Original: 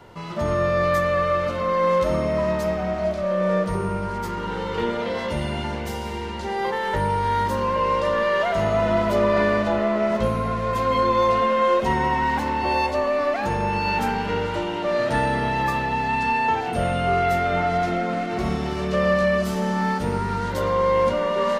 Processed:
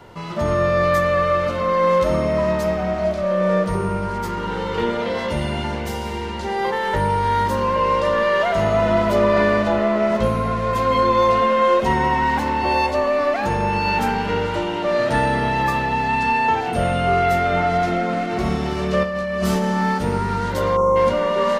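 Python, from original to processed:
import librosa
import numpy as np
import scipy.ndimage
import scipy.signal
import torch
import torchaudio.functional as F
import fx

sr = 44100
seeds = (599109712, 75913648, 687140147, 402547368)

y = fx.over_compress(x, sr, threshold_db=-25.0, ratio=-1.0, at=(19.03, 19.65))
y = fx.spec_box(y, sr, start_s=20.76, length_s=0.2, low_hz=1400.0, high_hz=5400.0, gain_db=-23)
y = y * 10.0 ** (3.0 / 20.0)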